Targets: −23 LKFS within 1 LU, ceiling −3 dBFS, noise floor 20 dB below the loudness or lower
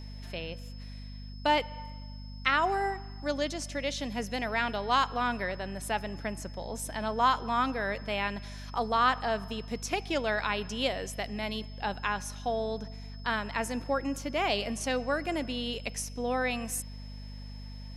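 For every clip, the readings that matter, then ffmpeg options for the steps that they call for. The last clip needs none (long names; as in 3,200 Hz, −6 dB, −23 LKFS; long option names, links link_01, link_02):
mains hum 50 Hz; hum harmonics up to 250 Hz; level of the hum −40 dBFS; interfering tone 5,200 Hz; level of the tone −53 dBFS; integrated loudness −31.5 LKFS; sample peak −9.5 dBFS; target loudness −23.0 LKFS
→ -af "bandreject=frequency=50:width_type=h:width=6,bandreject=frequency=100:width_type=h:width=6,bandreject=frequency=150:width_type=h:width=6,bandreject=frequency=200:width_type=h:width=6,bandreject=frequency=250:width_type=h:width=6"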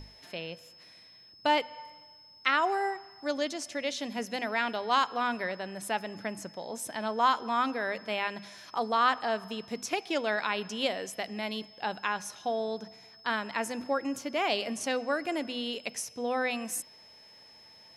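mains hum none found; interfering tone 5,200 Hz; level of the tone −53 dBFS
→ -af "bandreject=frequency=5200:width=30"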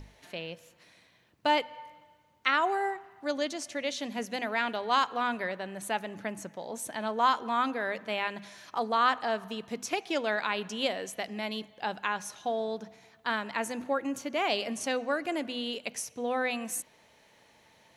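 interfering tone none found; integrated loudness −31.5 LKFS; sample peak −9.5 dBFS; target loudness −23.0 LKFS
→ -af "volume=8.5dB,alimiter=limit=-3dB:level=0:latency=1"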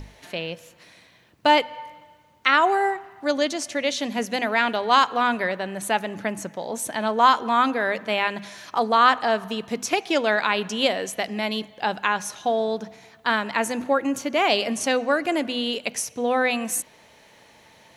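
integrated loudness −23.0 LKFS; sample peak −3.0 dBFS; background noise floor −54 dBFS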